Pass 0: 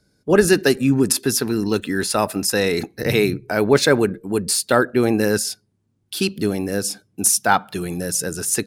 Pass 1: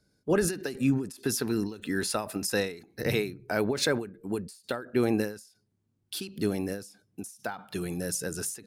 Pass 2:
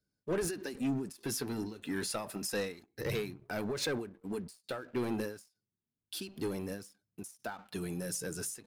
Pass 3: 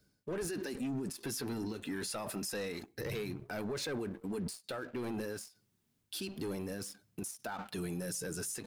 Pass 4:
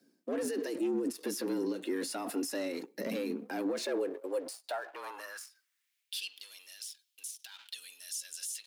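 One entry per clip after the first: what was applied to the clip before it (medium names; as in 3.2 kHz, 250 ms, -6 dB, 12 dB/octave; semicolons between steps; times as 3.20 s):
peak limiter -7.5 dBFS, peak gain reduction 6 dB; endings held to a fixed fall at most 120 dB/s; trim -7 dB
waveshaping leveller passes 2; flange 0.29 Hz, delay 0.5 ms, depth 7.5 ms, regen -57%; trim -8 dB
reverse; compression 6:1, threshold -43 dBFS, peak gain reduction 13 dB; reverse; peak limiter -45.5 dBFS, peak gain reduction 10 dB; trim +14 dB
frequency shift +85 Hz; high-pass sweep 260 Hz -> 3.3 kHz, 3.58–6.43 s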